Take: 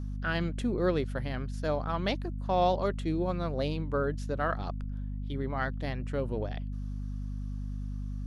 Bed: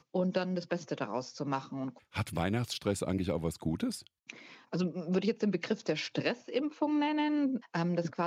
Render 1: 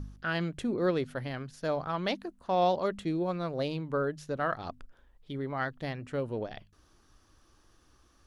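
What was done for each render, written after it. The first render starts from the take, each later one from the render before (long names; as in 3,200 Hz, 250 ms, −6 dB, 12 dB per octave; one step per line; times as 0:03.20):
hum removal 50 Hz, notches 5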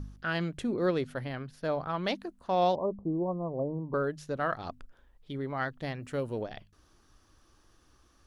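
0:01.24–0:02.04: parametric band 7,000 Hz −9 dB 0.99 octaves
0:02.75–0:03.94: Butterworth low-pass 1,100 Hz 96 dB per octave
0:06.02–0:06.42: high-shelf EQ 6,200 Hz +10.5 dB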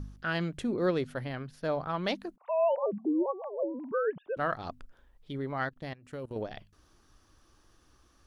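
0:02.36–0:04.37: three sine waves on the formant tracks
0:05.69–0:06.36: output level in coarse steps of 19 dB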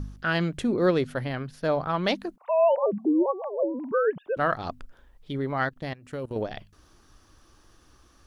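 level +6 dB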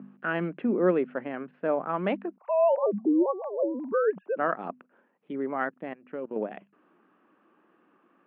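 Chebyshev band-pass filter 190–2,700 Hz, order 4
high-shelf EQ 2,100 Hz −9.5 dB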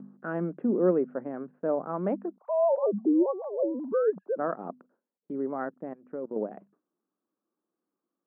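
drawn EQ curve 510 Hz 0 dB, 870 Hz −4 dB, 1,400 Hz −7 dB, 2,800 Hz −25 dB
noise gate with hold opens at −53 dBFS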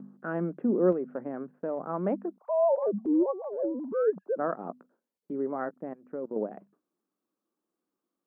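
0:00.92–0:01.81: downward compressor, threshold −27 dBFS
0:02.79–0:04.07: transient designer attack −7 dB, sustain −2 dB
0:04.69–0:05.71: double-tracking delay 17 ms −13.5 dB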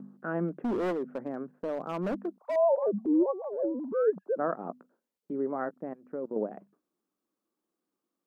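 0:00.48–0:02.56: hard clipping −27 dBFS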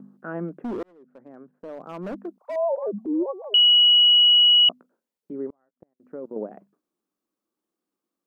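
0:00.83–0:02.27: fade in
0:03.54–0:04.69: beep over 2,920 Hz −12 dBFS
0:05.50–0:06.00: gate with flip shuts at −31 dBFS, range −37 dB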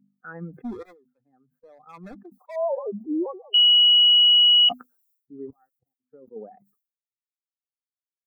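spectral dynamics exaggerated over time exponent 2
level that may fall only so fast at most 120 dB per second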